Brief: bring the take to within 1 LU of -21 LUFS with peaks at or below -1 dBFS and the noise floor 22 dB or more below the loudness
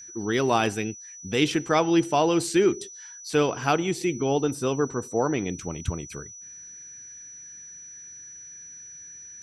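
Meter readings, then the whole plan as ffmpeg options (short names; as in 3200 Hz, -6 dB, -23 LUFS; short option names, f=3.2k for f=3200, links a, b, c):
steady tone 5900 Hz; tone level -41 dBFS; loudness -25.0 LUFS; peak -8.5 dBFS; loudness target -21.0 LUFS
-> -af "bandreject=f=5.9k:w=30"
-af "volume=4dB"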